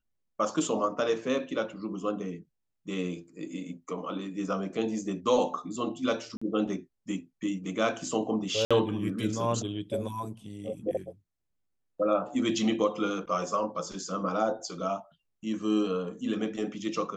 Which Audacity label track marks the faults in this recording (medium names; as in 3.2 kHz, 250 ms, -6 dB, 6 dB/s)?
6.370000	6.420000	dropout 45 ms
8.650000	8.710000	dropout 56 ms